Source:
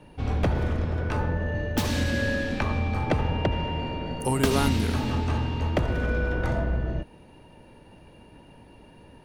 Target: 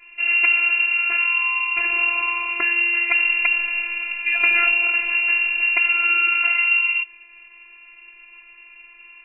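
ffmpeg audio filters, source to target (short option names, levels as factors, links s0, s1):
-af "lowpass=f=2400:t=q:w=0.5098,lowpass=f=2400:t=q:w=0.6013,lowpass=f=2400:t=q:w=0.9,lowpass=f=2400:t=q:w=2.563,afreqshift=-2800,afftfilt=real='hypot(re,im)*cos(PI*b)':imag='0':win_size=512:overlap=0.75,volume=2.51"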